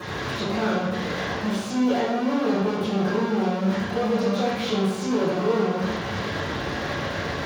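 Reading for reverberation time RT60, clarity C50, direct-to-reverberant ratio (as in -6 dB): 1.1 s, -1.0 dB, -17.0 dB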